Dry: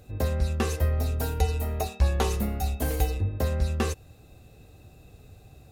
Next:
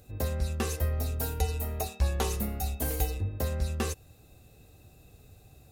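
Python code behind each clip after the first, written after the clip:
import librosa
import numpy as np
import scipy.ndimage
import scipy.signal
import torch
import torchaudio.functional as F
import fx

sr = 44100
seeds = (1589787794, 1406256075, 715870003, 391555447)

y = fx.high_shelf(x, sr, hz=6200.0, db=8.5)
y = F.gain(torch.from_numpy(y), -4.5).numpy()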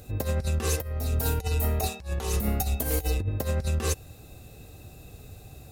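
y = fx.over_compress(x, sr, threshold_db=-32.0, ratio=-0.5)
y = F.gain(torch.from_numpy(y), 6.0).numpy()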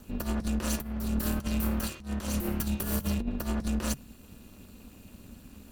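y = fx.lower_of_two(x, sr, delay_ms=0.69)
y = y * np.sin(2.0 * np.pi * 140.0 * np.arange(len(y)) / sr)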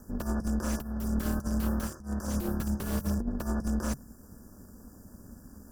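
y = fx.brickwall_bandstop(x, sr, low_hz=1800.0, high_hz=4700.0)
y = fx.slew_limit(y, sr, full_power_hz=88.0)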